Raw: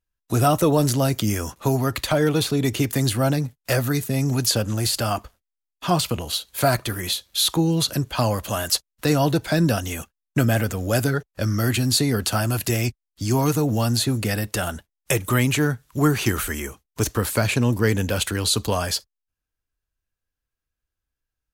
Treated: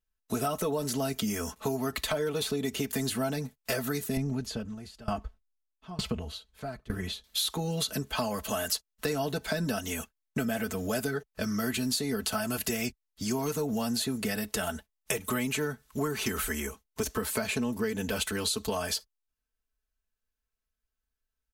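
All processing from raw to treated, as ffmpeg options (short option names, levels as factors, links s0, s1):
-filter_complex "[0:a]asettb=1/sr,asplit=3[s0][s1][s2];[s0]atrim=end=4.174[s3];[s1]atrim=start=4.17:end=7.24,asetpts=PTS-STARTPTS,afade=t=in:d=0.004:c=qsin,afade=t=out:st=3.066:d=0.004:c=qsin,aemphasis=mode=reproduction:type=bsi,aeval=exprs='val(0)*pow(10,-23*if(lt(mod(1.1*n/s,1),2*abs(1.1)/1000),1-mod(1.1*n/s,1)/(2*abs(1.1)/1000),(mod(1.1*n/s,1)-2*abs(1.1)/1000)/(1-2*abs(1.1)/1000))/20)':c=same[s4];[s2]atrim=start=7.236[s5];[s3][s4]acrossfade=d=0.004:c1=hsin:c2=qsin[s6];[s6][s5]acrossfade=d=0.004:c1=qsin:c2=hsin,equalizer=f=160:t=o:w=0.33:g=-6,aecho=1:1:4.6:0.79,acompressor=threshold=0.0794:ratio=6,volume=0.562"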